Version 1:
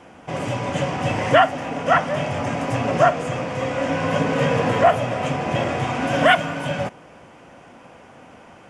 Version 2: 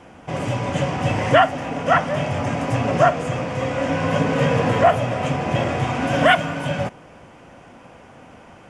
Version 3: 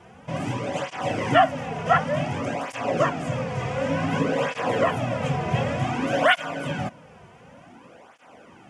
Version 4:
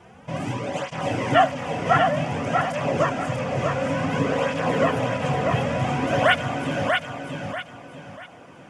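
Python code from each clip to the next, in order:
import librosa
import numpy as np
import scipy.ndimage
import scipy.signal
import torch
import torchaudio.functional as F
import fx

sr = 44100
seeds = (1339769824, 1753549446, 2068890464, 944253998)

y1 = fx.low_shelf(x, sr, hz=110.0, db=7.5)
y2 = fx.flanger_cancel(y1, sr, hz=0.55, depth_ms=3.8)
y2 = y2 * 10.0 ** (-1.0 / 20.0)
y3 = fx.echo_feedback(y2, sr, ms=640, feedback_pct=33, wet_db=-4.0)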